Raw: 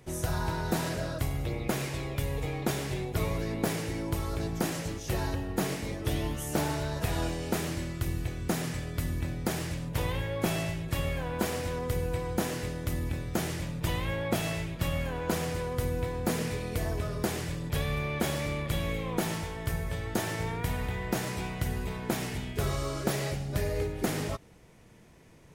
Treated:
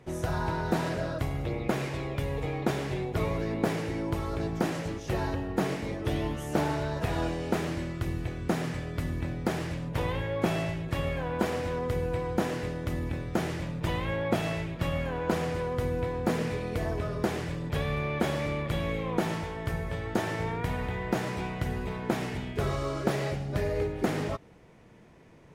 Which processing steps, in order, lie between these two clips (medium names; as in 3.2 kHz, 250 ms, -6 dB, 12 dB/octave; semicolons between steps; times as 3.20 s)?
low-pass 2.1 kHz 6 dB/octave; bass shelf 110 Hz -7 dB; trim +3.5 dB